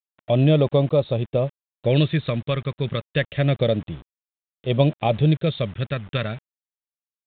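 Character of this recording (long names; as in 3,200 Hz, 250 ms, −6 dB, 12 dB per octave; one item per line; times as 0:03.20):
phaser sweep stages 2, 0.28 Hz, lowest notch 700–1,600 Hz
a quantiser's noise floor 8 bits, dither none
tremolo triangle 0.63 Hz, depth 35%
mu-law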